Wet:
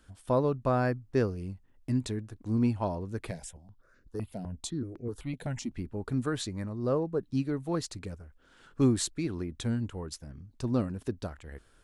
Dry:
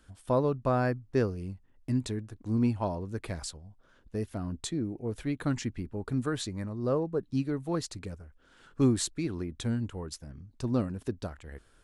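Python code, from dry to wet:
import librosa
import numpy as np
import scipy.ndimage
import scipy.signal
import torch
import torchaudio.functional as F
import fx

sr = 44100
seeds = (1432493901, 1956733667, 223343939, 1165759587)

y = fx.phaser_held(x, sr, hz=7.9, low_hz=320.0, high_hz=3200.0, at=(3.31, 5.72))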